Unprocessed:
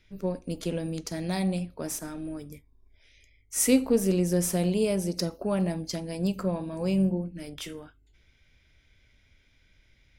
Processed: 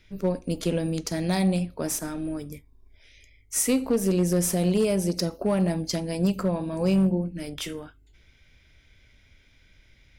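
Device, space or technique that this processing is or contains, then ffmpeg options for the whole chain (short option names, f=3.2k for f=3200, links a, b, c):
limiter into clipper: -af "alimiter=limit=-18.5dB:level=0:latency=1:release=265,asoftclip=type=hard:threshold=-21dB,volume=5dB"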